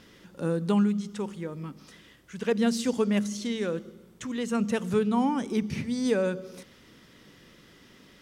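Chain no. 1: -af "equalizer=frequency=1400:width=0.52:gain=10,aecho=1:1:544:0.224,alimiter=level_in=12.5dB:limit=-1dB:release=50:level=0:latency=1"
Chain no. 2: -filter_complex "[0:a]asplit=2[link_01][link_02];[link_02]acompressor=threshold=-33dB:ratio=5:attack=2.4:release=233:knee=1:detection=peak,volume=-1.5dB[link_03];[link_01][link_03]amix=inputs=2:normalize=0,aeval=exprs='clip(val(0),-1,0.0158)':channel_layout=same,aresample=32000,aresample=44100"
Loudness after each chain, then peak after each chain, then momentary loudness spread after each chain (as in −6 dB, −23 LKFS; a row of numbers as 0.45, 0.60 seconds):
−14.0, −30.0 LKFS; −1.0, −12.5 dBFS; 16, 21 LU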